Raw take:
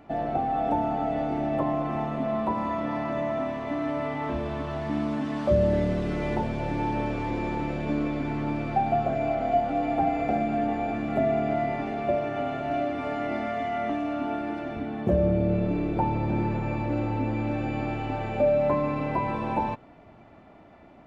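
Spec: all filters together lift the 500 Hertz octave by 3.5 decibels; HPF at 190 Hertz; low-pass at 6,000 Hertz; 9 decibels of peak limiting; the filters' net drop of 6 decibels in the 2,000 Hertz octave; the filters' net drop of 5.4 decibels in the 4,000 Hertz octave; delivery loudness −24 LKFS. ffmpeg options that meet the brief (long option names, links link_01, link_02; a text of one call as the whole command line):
ffmpeg -i in.wav -af "highpass=190,lowpass=6000,equalizer=frequency=500:width_type=o:gain=5.5,equalizer=frequency=2000:width_type=o:gain=-6.5,equalizer=frequency=4000:width_type=o:gain=-4,volume=4.5dB,alimiter=limit=-15dB:level=0:latency=1" out.wav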